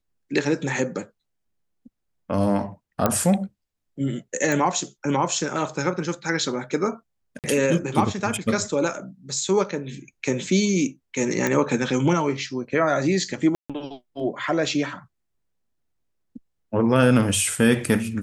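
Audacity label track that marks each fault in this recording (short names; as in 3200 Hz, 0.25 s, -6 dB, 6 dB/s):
3.060000	3.060000	pop -5 dBFS
4.520000	4.520000	pop
7.390000	7.440000	gap 48 ms
11.470000	11.470000	pop -9 dBFS
13.550000	13.700000	gap 0.146 s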